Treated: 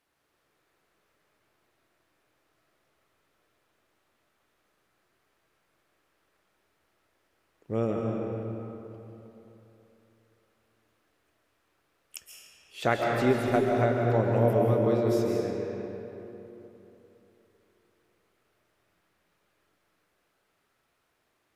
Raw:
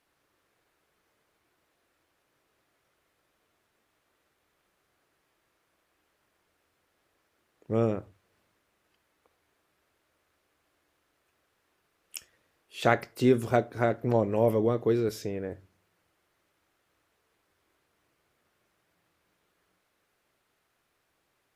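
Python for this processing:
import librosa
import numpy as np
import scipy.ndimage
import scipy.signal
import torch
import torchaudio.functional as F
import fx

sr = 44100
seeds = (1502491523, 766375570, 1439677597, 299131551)

y = fx.rev_freeverb(x, sr, rt60_s=3.3, hf_ratio=0.65, predelay_ms=100, drr_db=-1.0)
y = y * librosa.db_to_amplitude(-2.5)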